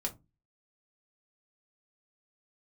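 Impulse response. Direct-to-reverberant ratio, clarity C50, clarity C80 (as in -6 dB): 0.5 dB, 17.0 dB, 25.5 dB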